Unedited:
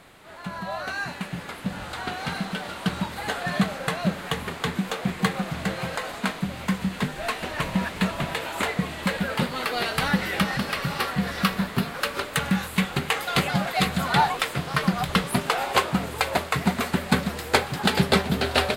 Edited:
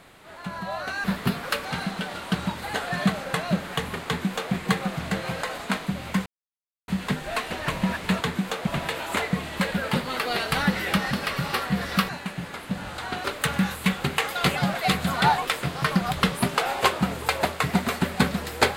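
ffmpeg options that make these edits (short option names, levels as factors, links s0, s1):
-filter_complex "[0:a]asplit=8[s0][s1][s2][s3][s4][s5][s6][s7];[s0]atrim=end=1.042[s8];[s1]atrim=start=11.548:end=12.162[s9];[s2]atrim=start=2.188:end=6.8,asetpts=PTS-STARTPTS,afade=t=out:st=4.608:d=0.004:c=hsin,apad=pad_dur=0.62[s10];[s3]atrim=start=6.8:end=8.132,asetpts=PTS-STARTPTS,afade=t=in:d=0.004:c=hsin[s11];[s4]atrim=start=4.608:end=5.072[s12];[s5]atrim=start=8.128:end=11.552[s13];[s6]atrim=start=1.038:end=2.192[s14];[s7]atrim=start=12.158[s15];[s8][s9]acrossfade=d=0.004:c1=hsin:c2=hsin[s16];[s10][s11]concat=n=2:v=0:a=1[s17];[s16][s17]acrossfade=d=0.004:c1=hsin:c2=hsin[s18];[s18][s12]acrossfade=d=0.004:c1=hsin:c2=hsin[s19];[s19][s13]acrossfade=d=0.004:c1=hsin:c2=hsin[s20];[s20][s14]acrossfade=d=0.004:c1=hsin:c2=hsin[s21];[s21][s15]acrossfade=d=0.004:c1=hsin:c2=hsin"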